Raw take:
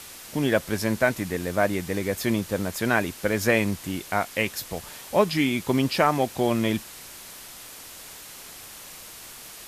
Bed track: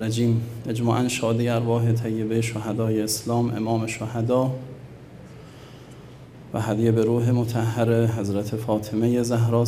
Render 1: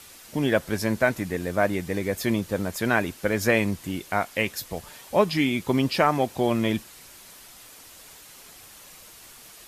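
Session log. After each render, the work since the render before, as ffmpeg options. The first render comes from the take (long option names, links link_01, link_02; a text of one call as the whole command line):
ffmpeg -i in.wav -af "afftdn=noise_reduction=6:noise_floor=-43" out.wav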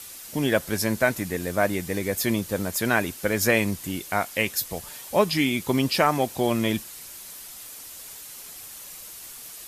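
ffmpeg -i in.wav -af "aemphasis=mode=production:type=cd" out.wav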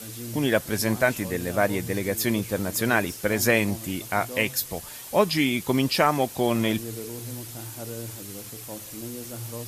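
ffmpeg -i in.wav -i bed.wav -filter_complex "[1:a]volume=-16.5dB[link_01];[0:a][link_01]amix=inputs=2:normalize=0" out.wav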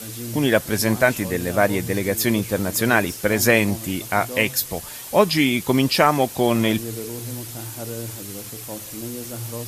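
ffmpeg -i in.wav -af "volume=4.5dB" out.wav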